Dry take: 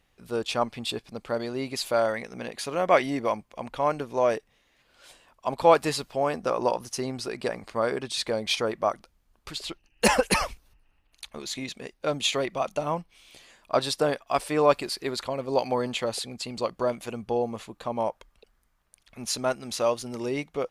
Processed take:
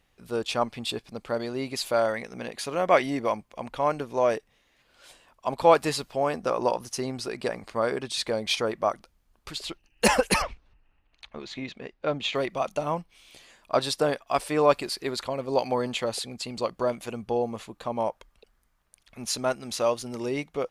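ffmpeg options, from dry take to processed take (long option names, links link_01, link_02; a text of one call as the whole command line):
ffmpeg -i in.wav -filter_complex "[0:a]asettb=1/sr,asplit=3[link_01][link_02][link_03];[link_01]atrim=end=10.424[link_04];[link_02]atrim=start=10.42:end=12.35,asetpts=PTS-STARTPTS,afade=type=in:duration=0.004:curve=qsin,afade=type=out:start_time=1.926:duration=0.004:curve=qsin,lowpass=3100[link_05];[link_03]atrim=start=12.346[link_06];[link_04][link_05]acrossfade=duration=0.004:curve1=hsin:curve2=qsin[link_07];[link_07][link_06]acrossfade=duration=0.004:curve1=qsin:curve2=hsin" out.wav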